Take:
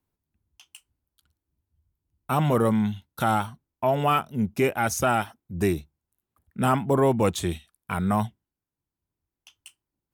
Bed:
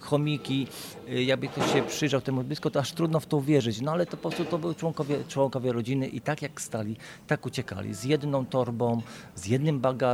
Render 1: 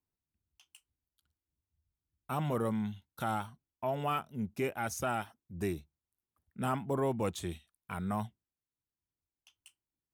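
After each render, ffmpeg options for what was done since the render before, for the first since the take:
ffmpeg -i in.wav -af "volume=-11dB" out.wav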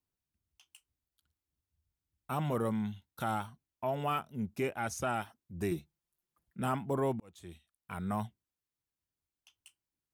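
ffmpeg -i in.wav -filter_complex "[0:a]asettb=1/sr,asplit=3[link_01][link_02][link_03];[link_01]atrim=end=4.634[link_04];[link_02]atrim=start=4.63:end=5.16,asetpts=PTS-STARTPTS,afade=type=in:duration=0.004:curve=qsin,afade=type=out:start_time=0.526:duration=0.004:curve=qsin,equalizer=frequency=15000:width=1.5:gain=-13.5[link_05];[link_03]atrim=start=5.156[link_06];[link_04][link_05]acrossfade=duration=0.004:curve1=hsin:curve2=qsin[link_07];[link_07][link_06]acrossfade=duration=0.004:curve1=qsin:curve2=hsin,asettb=1/sr,asplit=3[link_08][link_09][link_10];[link_08]atrim=end=5.714[link_11];[link_09]atrim=start=5.71:end=6.6,asetpts=PTS-STARTPTS,afade=type=in:duration=0.004:curve=qsin,afade=type=out:start_time=0.886:duration=0.004:curve=qsin,aecho=1:1:5.8:0.82,atrim=end_sample=39249[link_12];[link_10]atrim=start=6.596[link_13];[link_11][link_12]acrossfade=duration=0.004:curve1=hsin:curve2=qsin[link_14];[link_14][link_13]acrossfade=duration=0.004:curve1=qsin:curve2=hsin,asplit=2[link_15][link_16];[link_15]atrim=end=7.2,asetpts=PTS-STARTPTS,afade=type=out:start_time=7.196:duration=0.004:curve=hsin[link_17];[link_16]atrim=start=7.2,asetpts=PTS-STARTPTS,afade=type=in:duration=0.93[link_18];[link_17][link_18]concat=n=2:v=0:a=1" out.wav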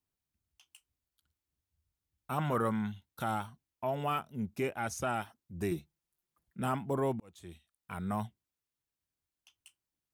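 ffmpeg -i in.wav -filter_complex "[0:a]asettb=1/sr,asplit=3[link_01][link_02][link_03];[link_01]atrim=end=2.384[link_04];[link_02]atrim=start=2.38:end=2.92,asetpts=PTS-STARTPTS,afade=type=in:duration=0.004:curve=qsin,afade=type=out:start_time=0.536:duration=0.004:curve=qsin,equalizer=frequency=1400:width_type=o:width=0.92:gain=9.5[link_05];[link_03]atrim=start=2.916[link_06];[link_04][link_05]acrossfade=duration=0.004:curve1=hsin:curve2=qsin[link_07];[link_07][link_06]acrossfade=duration=0.004:curve1=qsin:curve2=hsin" out.wav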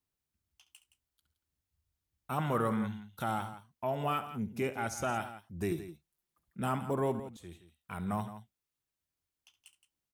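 ffmpeg -i in.wav -af "aecho=1:1:69|169:0.2|0.224" out.wav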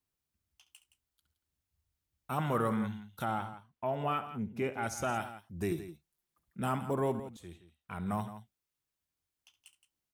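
ffmpeg -i in.wav -filter_complex "[0:a]asettb=1/sr,asplit=3[link_01][link_02][link_03];[link_01]atrim=end=3.254[link_04];[link_02]atrim=start=3.25:end=4.83,asetpts=PTS-STARTPTS,afade=type=in:duration=0.004:curve=qsin,afade=type=out:start_time=1.576:duration=0.004:curve=qsin,bass=frequency=250:gain=-1,treble=frequency=4000:gain=-10[link_05];[link_03]atrim=start=4.826[link_06];[link_04][link_05]acrossfade=duration=0.004:curve1=hsin:curve2=qsin[link_07];[link_07][link_06]acrossfade=duration=0.004:curve1=qsin:curve2=hsin,asettb=1/sr,asplit=3[link_08][link_09][link_10];[link_08]atrim=end=7.524[link_11];[link_09]atrim=start=7.52:end=8.06,asetpts=PTS-STARTPTS,afade=type=in:duration=0.004:curve=qsin,afade=type=out:start_time=0.536:duration=0.004:curve=qsin,highshelf=frequency=6100:gain=-8.5[link_12];[link_10]atrim=start=8.056[link_13];[link_11][link_12]acrossfade=duration=0.004:curve1=hsin:curve2=qsin[link_14];[link_14][link_13]acrossfade=duration=0.004:curve1=qsin:curve2=hsin" out.wav

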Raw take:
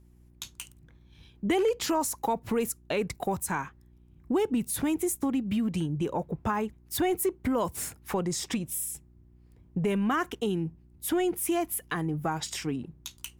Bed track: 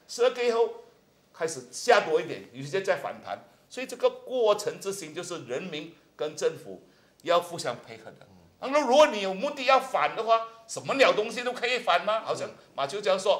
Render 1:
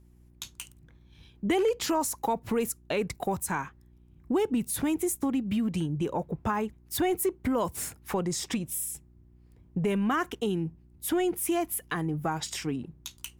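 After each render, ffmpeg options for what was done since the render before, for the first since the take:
ffmpeg -i in.wav -af anull out.wav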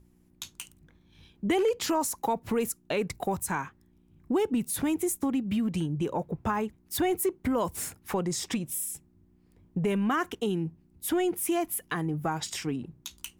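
ffmpeg -i in.wav -af "bandreject=frequency=60:width_type=h:width=4,bandreject=frequency=120:width_type=h:width=4" out.wav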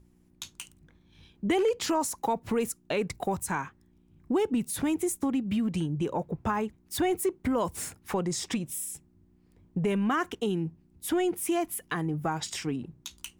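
ffmpeg -i in.wav -af "equalizer=frequency=13000:width_type=o:width=0.34:gain=-7.5" out.wav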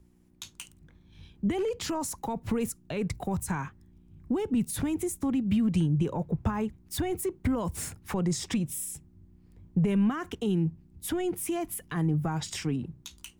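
ffmpeg -i in.wav -filter_complex "[0:a]acrossover=split=170[link_01][link_02];[link_01]dynaudnorm=framelen=400:gausssize=5:maxgain=9dB[link_03];[link_02]alimiter=level_in=1dB:limit=-24dB:level=0:latency=1:release=55,volume=-1dB[link_04];[link_03][link_04]amix=inputs=2:normalize=0" out.wav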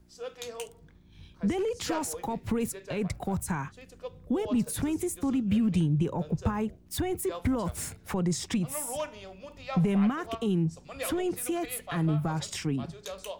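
ffmpeg -i in.wav -i bed.wav -filter_complex "[1:a]volume=-16dB[link_01];[0:a][link_01]amix=inputs=2:normalize=0" out.wav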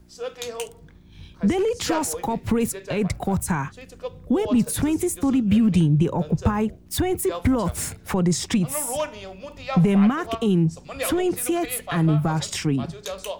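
ffmpeg -i in.wav -af "volume=7.5dB" out.wav

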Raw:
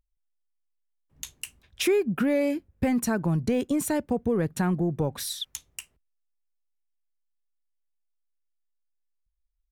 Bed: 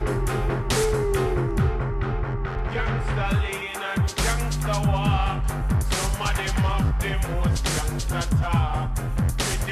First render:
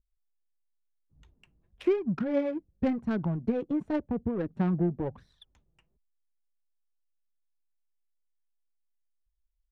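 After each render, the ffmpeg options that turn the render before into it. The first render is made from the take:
ffmpeg -i in.wav -af "flanger=delay=0.5:depth=5.8:regen=18:speed=0.95:shape=sinusoidal,adynamicsmooth=sensitivity=1.5:basefreq=620" out.wav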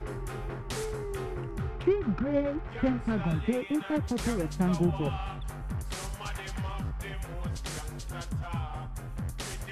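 ffmpeg -i in.wav -i bed.wav -filter_complex "[1:a]volume=-12.5dB[link_01];[0:a][link_01]amix=inputs=2:normalize=0" out.wav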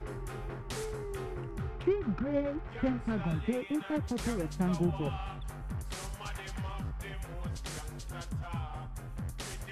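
ffmpeg -i in.wav -af "volume=-3.5dB" out.wav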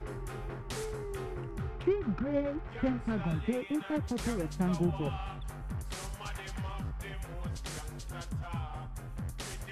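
ffmpeg -i in.wav -af anull out.wav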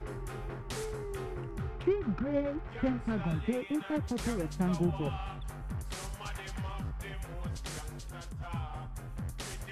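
ffmpeg -i in.wav -filter_complex "[0:a]asplit=3[link_01][link_02][link_03];[link_01]afade=type=out:start_time=7.94:duration=0.02[link_04];[link_02]acompressor=threshold=-39dB:ratio=5:attack=3.2:release=140:knee=1:detection=peak,afade=type=in:start_time=7.94:duration=0.02,afade=type=out:start_time=8.39:duration=0.02[link_05];[link_03]afade=type=in:start_time=8.39:duration=0.02[link_06];[link_04][link_05][link_06]amix=inputs=3:normalize=0" out.wav

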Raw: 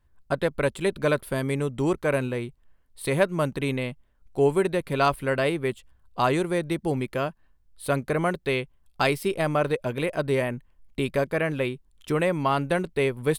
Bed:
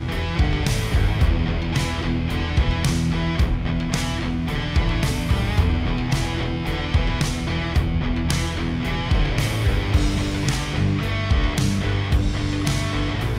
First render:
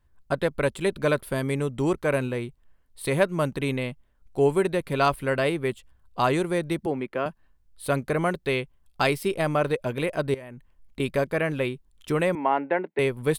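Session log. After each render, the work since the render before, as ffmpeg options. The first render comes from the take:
ffmpeg -i in.wav -filter_complex "[0:a]asettb=1/sr,asplit=3[link_01][link_02][link_03];[link_01]atrim=end=6.864[link_04];[link_02]atrim=start=6.86:end=7.26,asetpts=PTS-STARTPTS,afade=type=in:duration=0.004:curve=qsin,afade=type=out:start_time=0.396:duration=0.004:curve=qsin,acrossover=split=190 3000:gain=0.2 1 0.158[link_05][link_06][link_07];[link_05][link_06][link_07]amix=inputs=3:normalize=0[link_08];[link_03]atrim=start=7.256[link_09];[link_04][link_08]acrossfade=duration=0.004:curve1=hsin:curve2=qsin[link_10];[link_10][link_09]acrossfade=duration=0.004:curve1=qsin:curve2=hsin,asettb=1/sr,asplit=3[link_11][link_12][link_13];[link_11]atrim=end=10.344[link_14];[link_12]atrim=start=10.34:end=11,asetpts=PTS-STARTPTS,afade=type=in:duration=0.004:curve=qsin,afade=type=out:start_time=0.656:duration=0.004:curve=qsin,acompressor=threshold=-36dB:ratio=16:attack=3.2:release=140:knee=1:detection=peak[link_15];[link_13]atrim=start=10.996[link_16];[link_14][link_15]acrossfade=duration=0.004:curve1=hsin:curve2=qsin[link_17];[link_17][link_16]acrossfade=duration=0.004:curve1=qsin:curve2=hsin,asettb=1/sr,asplit=3[link_18][link_19][link_20];[link_18]atrim=end=12.354[link_21];[link_19]atrim=start=12.35:end=12.99,asetpts=PTS-STARTPTS,afade=type=in:duration=0.004:curve=qsin,afade=type=out:start_time=0.636:duration=0.004:curve=qsin,highpass=frequency=250:width=0.5412,highpass=frequency=250:width=1.3066,equalizer=frequency=880:width_type=q:width=4:gain=7,equalizer=frequency=1200:width_type=q:width=4:gain=-8,equalizer=frequency=2000:width_type=q:width=4:gain=5,lowpass=frequency=2300:width=0.5412,lowpass=frequency=2300:width=1.3066[link_22];[link_20]atrim=start=12.986[link_23];[link_21][link_22]acrossfade=duration=0.004:curve1=hsin:curve2=qsin[link_24];[link_24][link_23]acrossfade=duration=0.004:curve1=qsin:curve2=hsin" out.wav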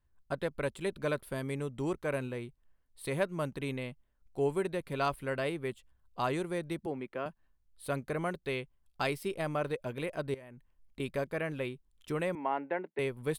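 ffmpeg -i in.wav -af "volume=-9.5dB" out.wav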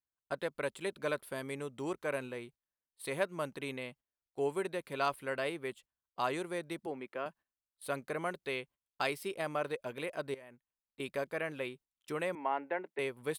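ffmpeg -i in.wav -af "highpass=frequency=420:poles=1,agate=range=-15dB:threshold=-56dB:ratio=16:detection=peak" out.wav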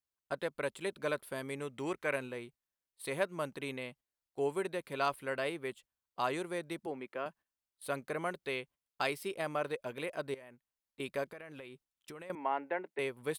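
ffmpeg -i in.wav -filter_complex "[0:a]asettb=1/sr,asplit=3[link_01][link_02][link_03];[link_01]atrim=end=1.624[link_04];[link_02]atrim=start=1.62:end=2.16,asetpts=PTS-STARTPTS,afade=type=in:duration=0.004:curve=qsin,afade=type=out:start_time=0.536:duration=0.004:curve=qsin,equalizer=frequency=2100:width=1.5:gain=7.5[link_05];[link_03]atrim=start=2.156[link_06];[link_04][link_05]acrossfade=duration=0.004:curve1=hsin:curve2=qsin[link_07];[link_07][link_06]acrossfade=duration=0.004:curve1=qsin:curve2=hsin,asettb=1/sr,asplit=3[link_08][link_09][link_10];[link_08]atrim=end=11.264[link_11];[link_09]atrim=start=11.26:end=12.3,asetpts=PTS-STARTPTS,afade=type=in:duration=0.004:curve=qsin,afade=type=out:start_time=1.036:duration=0.004:curve=qsin,acompressor=threshold=-44dB:ratio=12:attack=3.2:release=140:knee=1:detection=peak[link_12];[link_10]atrim=start=12.296[link_13];[link_11][link_12]acrossfade=duration=0.004:curve1=hsin:curve2=qsin[link_14];[link_14][link_13]acrossfade=duration=0.004:curve1=qsin:curve2=hsin" out.wav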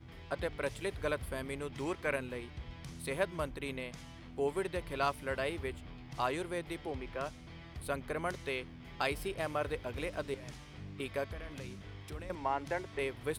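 ffmpeg -i in.wav -i bed.wav -filter_complex "[1:a]volume=-26.5dB[link_01];[0:a][link_01]amix=inputs=2:normalize=0" out.wav

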